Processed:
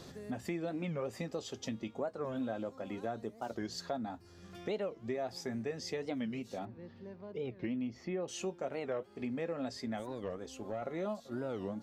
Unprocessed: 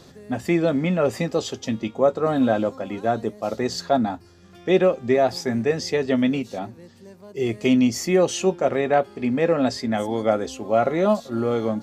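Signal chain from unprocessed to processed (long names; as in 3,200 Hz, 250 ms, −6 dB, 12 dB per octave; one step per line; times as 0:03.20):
downward compressor 3 to 1, threshold −37 dBFS, peak gain reduction 17.5 dB
0:06.65–0:08.28: high-frequency loss of the air 300 metres
0:09.99–0:10.82: tube saturation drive 26 dB, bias 0.5
wow of a warped record 45 rpm, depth 250 cents
level −3 dB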